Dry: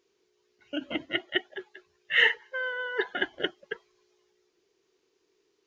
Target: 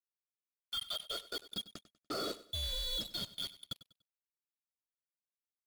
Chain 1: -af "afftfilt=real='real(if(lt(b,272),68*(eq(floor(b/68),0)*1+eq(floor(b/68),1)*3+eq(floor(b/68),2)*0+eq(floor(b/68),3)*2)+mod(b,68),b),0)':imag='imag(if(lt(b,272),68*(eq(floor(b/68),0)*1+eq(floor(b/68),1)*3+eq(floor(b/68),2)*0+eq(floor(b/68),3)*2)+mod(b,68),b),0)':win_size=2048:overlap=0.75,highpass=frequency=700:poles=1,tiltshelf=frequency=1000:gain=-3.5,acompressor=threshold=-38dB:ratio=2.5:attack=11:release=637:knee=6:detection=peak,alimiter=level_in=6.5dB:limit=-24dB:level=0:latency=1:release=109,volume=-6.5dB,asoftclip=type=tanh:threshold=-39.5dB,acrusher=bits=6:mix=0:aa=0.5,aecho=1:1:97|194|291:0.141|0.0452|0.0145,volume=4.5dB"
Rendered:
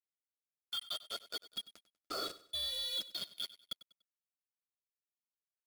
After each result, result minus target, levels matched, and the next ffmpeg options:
downward compressor: peak gain reduction +12.5 dB; 500 Hz band −4.0 dB
-af "afftfilt=real='real(if(lt(b,272),68*(eq(floor(b/68),0)*1+eq(floor(b/68),1)*3+eq(floor(b/68),2)*0+eq(floor(b/68),3)*2)+mod(b,68),b),0)':imag='imag(if(lt(b,272),68*(eq(floor(b/68),0)*1+eq(floor(b/68),1)*3+eq(floor(b/68),2)*0+eq(floor(b/68),3)*2)+mod(b,68),b),0)':win_size=2048:overlap=0.75,highpass=frequency=700:poles=1,tiltshelf=frequency=1000:gain=-3.5,alimiter=level_in=6.5dB:limit=-24dB:level=0:latency=1:release=109,volume=-6.5dB,asoftclip=type=tanh:threshold=-39.5dB,acrusher=bits=6:mix=0:aa=0.5,aecho=1:1:97|194|291:0.141|0.0452|0.0145,volume=4.5dB"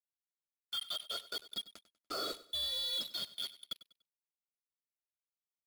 500 Hz band −4.0 dB
-af "afftfilt=real='real(if(lt(b,272),68*(eq(floor(b/68),0)*1+eq(floor(b/68),1)*3+eq(floor(b/68),2)*0+eq(floor(b/68),3)*2)+mod(b,68),b),0)':imag='imag(if(lt(b,272),68*(eq(floor(b/68),0)*1+eq(floor(b/68),1)*3+eq(floor(b/68),2)*0+eq(floor(b/68),3)*2)+mod(b,68),b),0)':win_size=2048:overlap=0.75,tiltshelf=frequency=1000:gain=-3.5,alimiter=level_in=6.5dB:limit=-24dB:level=0:latency=1:release=109,volume=-6.5dB,asoftclip=type=tanh:threshold=-39.5dB,acrusher=bits=6:mix=0:aa=0.5,aecho=1:1:97|194|291:0.141|0.0452|0.0145,volume=4.5dB"

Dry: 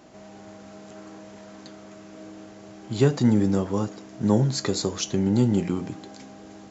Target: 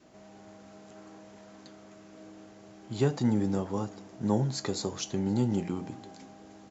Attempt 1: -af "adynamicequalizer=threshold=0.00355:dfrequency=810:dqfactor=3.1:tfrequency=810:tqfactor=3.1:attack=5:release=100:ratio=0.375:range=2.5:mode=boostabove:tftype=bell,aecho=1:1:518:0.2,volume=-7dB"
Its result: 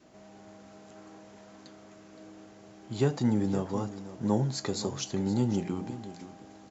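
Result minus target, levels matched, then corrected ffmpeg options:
echo-to-direct +10.5 dB
-af "adynamicequalizer=threshold=0.00355:dfrequency=810:dqfactor=3.1:tfrequency=810:tqfactor=3.1:attack=5:release=100:ratio=0.375:range=2.5:mode=boostabove:tftype=bell,aecho=1:1:518:0.0596,volume=-7dB"

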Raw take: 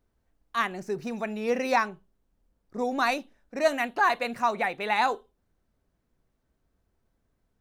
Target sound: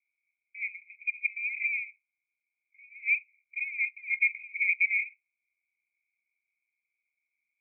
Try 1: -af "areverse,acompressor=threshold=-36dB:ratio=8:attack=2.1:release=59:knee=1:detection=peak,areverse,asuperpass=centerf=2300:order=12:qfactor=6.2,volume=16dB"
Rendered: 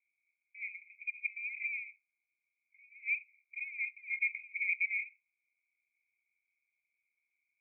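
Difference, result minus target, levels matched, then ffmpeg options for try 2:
downward compressor: peak gain reduction +7.5 dB
-af "areverse,acompressor=threshold=-27.5dB:ratio=8:attack=2.1:release=59:knee=1:detection=peak,areverse,asuperpass=centerf=2300:order=12:qfactor=6.2,volume=16dB"

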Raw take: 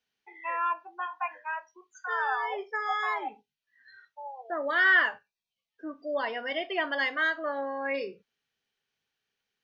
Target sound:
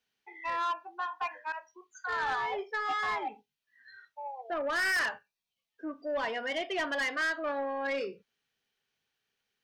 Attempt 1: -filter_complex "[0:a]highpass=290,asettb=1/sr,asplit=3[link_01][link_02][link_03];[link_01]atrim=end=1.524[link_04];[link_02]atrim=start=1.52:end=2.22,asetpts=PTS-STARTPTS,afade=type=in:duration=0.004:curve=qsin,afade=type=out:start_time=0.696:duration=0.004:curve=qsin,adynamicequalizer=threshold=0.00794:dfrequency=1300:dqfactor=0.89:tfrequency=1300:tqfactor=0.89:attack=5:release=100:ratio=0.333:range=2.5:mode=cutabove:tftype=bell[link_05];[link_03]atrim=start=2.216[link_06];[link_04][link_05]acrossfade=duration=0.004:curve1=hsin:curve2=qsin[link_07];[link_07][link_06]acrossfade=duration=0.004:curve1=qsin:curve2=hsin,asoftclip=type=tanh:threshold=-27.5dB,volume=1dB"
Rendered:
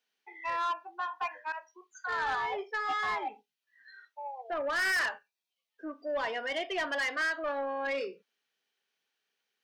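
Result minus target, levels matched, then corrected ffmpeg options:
250 Hz band −3.0 dB
-filter_complex "[0:a]asettb=1/sr,asplit=3[link_01][link_02][link_03];[link_01]atrim=end=1.524[link_04];[link_02]atrim=start=1.52:end=2.22,asetpts=PTS-STARTPTS,afade=type=in:duration=0.004:curve=qsin,afade=type=out:start_time=0.696:duration=0.004:curve=qsin,adynamicequalizer=threshold=0.00794:dfrequency=1300:dqfactor=0.89:tfrequency=1300:tqfactor=0.89:attack=5:release=100:ratio=0.333:range=2.5:mode=cutabove:tftype=bell[link_05];[link_03]atrim=start=2.216[link_06];[link_04][link_05]acrossfade=duration=0.004:curve1=hsin:curve2=qsin[link_07];[link_07][link_06]acrossfade=duration=0.004:curve1=qsin:curve2=hsin,asoftclip=type=tanh:threshold=-27.5dB,volume=1dB"

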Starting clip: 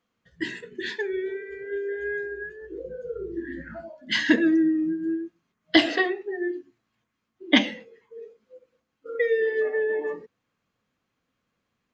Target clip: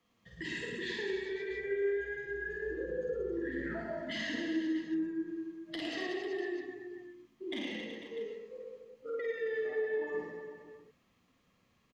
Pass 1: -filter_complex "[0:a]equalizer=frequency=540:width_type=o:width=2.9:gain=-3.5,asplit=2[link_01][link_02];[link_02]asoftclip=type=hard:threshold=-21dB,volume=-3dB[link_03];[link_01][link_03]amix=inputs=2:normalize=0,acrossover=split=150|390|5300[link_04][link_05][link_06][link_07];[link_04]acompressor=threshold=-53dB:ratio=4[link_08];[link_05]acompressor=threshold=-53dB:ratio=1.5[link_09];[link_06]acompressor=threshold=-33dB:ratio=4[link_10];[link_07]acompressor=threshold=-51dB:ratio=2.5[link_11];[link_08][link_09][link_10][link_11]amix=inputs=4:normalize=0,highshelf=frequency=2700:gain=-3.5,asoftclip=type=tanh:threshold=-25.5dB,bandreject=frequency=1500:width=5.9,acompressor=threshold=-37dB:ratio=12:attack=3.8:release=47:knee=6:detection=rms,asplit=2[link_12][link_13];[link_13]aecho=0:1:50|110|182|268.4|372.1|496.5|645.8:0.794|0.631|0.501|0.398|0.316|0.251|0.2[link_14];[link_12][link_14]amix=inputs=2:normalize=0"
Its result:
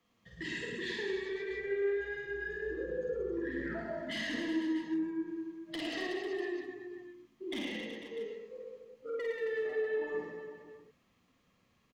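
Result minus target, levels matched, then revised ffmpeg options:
hard clipping: distortion +13 dB; soft clipping: distortion +12 dB
-filter_complex "[0:a]equalizer=frequency=540:width_type=o:width=2.9:gain=-3.5,asplit=2[link_01][link_02];[link_02]asoftclip=type=hard:threshold=-11dB,volume=-3dB[link_03];[link_01][link_03]amix=inputs=2:normalize=0,acrossover=split=150|390|5300[link_04][link_05][link_06][link_07];[link_04]acompressor=threshold=-53dB:ratio=4[link_08];[link_05]acompressor=threshold=-53dB:ratio=1.5[link_09];[link_06]acompressor=threshold=-33dB:ratio=4[link_10];[link_07]acompressor=threshold=-51dB:ratio=2.5[link_11];[link_08][link_09][link_10][link_11]amix=inputs=4:normalize=0,highshelf=frequency=2700:gain=-3.5,asoftclip=type=tanh:threshold=-16dB,bandreject=frequency=1500:width=5.9,acompressor=threshold=-37dB:ratio=12:attack=3.8:release=47:knee=6:detection=rms,asplit=2[link_12][link_13];[link_13]aecho=0:1:50|110|182|268.4|372.1|496.5|645.8:0.794|0.631|0.501|0.398|0.316|0.251|0.2[link_14];[link_12][link_14]amix=inputs=2:normalize=0"

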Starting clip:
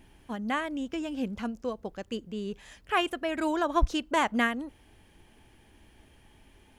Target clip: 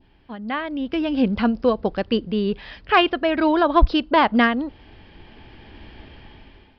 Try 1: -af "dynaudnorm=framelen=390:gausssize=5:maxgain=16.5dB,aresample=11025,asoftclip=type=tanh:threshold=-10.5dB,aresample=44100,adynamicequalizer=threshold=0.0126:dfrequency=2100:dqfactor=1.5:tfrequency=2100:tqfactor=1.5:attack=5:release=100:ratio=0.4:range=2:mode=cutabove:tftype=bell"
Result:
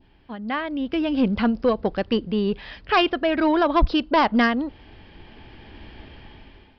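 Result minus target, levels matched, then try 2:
soft clipping: distortion +11 dB
-af "dynaudnorm=framelen=390:gausssize=5:maxgain=16.5dB,aresample=11025,asoftclip=type=tanh:threshold=-2dB,aresample=44100,adynamicequalizer=threshold=0.0126:dfrequency=2100:dqfactor=1.5:tfrequency=2100:tqfactor=1.5:attack=5:release=100:ratio=0.4:range=2:mode=cutabove:tftype=bell"

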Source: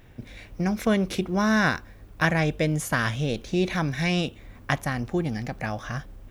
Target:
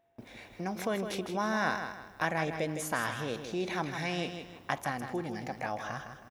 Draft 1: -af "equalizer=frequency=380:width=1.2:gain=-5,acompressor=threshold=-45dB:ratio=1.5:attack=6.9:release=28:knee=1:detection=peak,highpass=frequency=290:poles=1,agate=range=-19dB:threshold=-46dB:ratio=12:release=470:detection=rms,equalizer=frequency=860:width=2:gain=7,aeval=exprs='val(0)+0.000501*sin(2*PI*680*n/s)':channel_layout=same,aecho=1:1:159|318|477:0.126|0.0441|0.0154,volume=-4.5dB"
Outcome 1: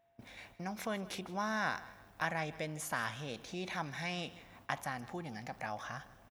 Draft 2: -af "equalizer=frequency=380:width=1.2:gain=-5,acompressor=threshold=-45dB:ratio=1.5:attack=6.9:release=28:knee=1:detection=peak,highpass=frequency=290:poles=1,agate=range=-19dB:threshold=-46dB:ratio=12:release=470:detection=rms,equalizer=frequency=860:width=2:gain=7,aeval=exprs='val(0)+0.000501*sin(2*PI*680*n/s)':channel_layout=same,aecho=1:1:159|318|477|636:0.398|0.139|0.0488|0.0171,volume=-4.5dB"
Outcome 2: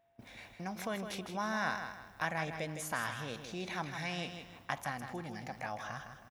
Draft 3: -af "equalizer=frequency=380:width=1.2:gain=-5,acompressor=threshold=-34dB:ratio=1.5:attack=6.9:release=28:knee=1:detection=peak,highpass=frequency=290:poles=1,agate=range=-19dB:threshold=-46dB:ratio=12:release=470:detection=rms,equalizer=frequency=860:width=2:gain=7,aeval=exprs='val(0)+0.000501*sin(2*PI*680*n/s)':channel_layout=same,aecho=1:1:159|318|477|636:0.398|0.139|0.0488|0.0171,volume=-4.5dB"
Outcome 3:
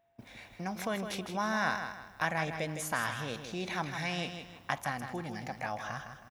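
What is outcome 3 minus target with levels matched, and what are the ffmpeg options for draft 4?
500 Hz band −2.5 dB
-af "equalizer=frequency=380:width=1.2:gain=3,acompressor=threshold=-34dB:ratio=1.5:attack=6.9:release=28:knee=1:detection=peak,highpass=frequency=290:poles=1,agate=range=-19dB:threshold=-46dB:ratio=12:release=470:detection=rms,equalizer=frequency=860:width=2:gain=7,aeval=exprs='val(0)+0.000501*sin(2*PI*680*n/s)':channel_layout=same,aecho=1:1:159|318|477|636:0.398|0.139|0.0488|0.0171,volume=-4.5dB"

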